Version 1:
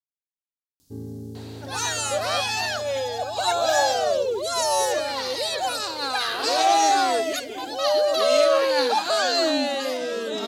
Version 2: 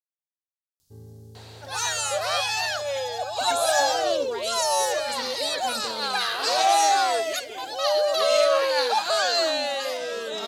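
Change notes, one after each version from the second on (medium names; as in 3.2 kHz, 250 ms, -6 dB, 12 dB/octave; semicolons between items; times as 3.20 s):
speech: unmuted; first sound -5.0 dB; master: add peaking EQ 270 Hz -15 dB 0.78 oct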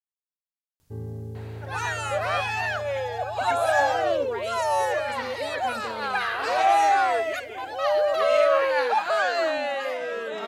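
first sound +10.0 dB; master: add resonant high shelf 3.1 kHz -11.5 dB, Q 1.5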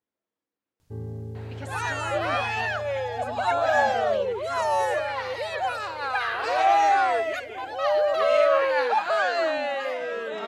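speech: entry -1.90 s; master: add treble shelf 8.4 kHz -9 dB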